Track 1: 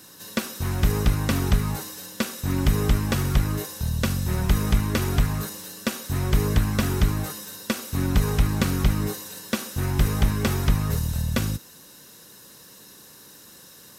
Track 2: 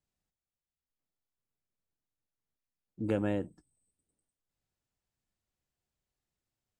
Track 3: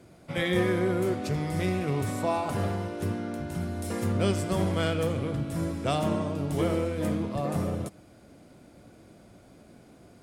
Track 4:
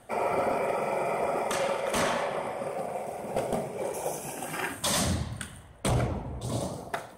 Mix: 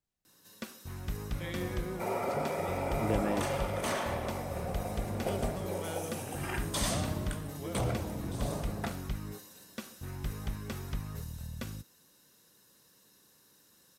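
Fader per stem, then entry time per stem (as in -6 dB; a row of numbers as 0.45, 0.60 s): -16.0, -1.5, -13.0, -6.0 dB; 0.25, 0.00, 1.05, 1.90 s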